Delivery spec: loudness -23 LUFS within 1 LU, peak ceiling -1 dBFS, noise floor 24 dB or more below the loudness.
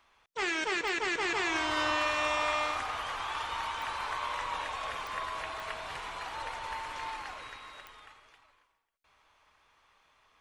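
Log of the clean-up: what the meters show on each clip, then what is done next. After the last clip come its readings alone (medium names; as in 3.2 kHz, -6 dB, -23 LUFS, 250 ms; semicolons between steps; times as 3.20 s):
clicks found 5; loudness -33.0 LUFS; peak level -19.5 dBFS; loudness target -23.0 LUFS
-> de-click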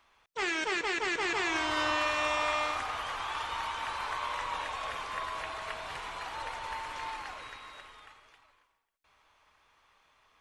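clicks found 0; loudness -33.0 LUFS; peak level -19.5 dBFS; loudness target -23.0 LUFS
-> trim +10 dB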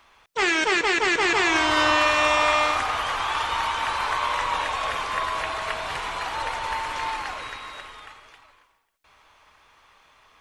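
loudness -23.0 LUFS; peak level -9.5 dBFS; noise floor -59 dBFS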